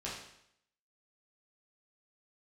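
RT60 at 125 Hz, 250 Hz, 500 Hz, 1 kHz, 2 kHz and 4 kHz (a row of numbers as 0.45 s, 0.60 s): 0.70 s, 0.70 s, 0.70 s, 0.75 s, 0.75 s, 0.70 s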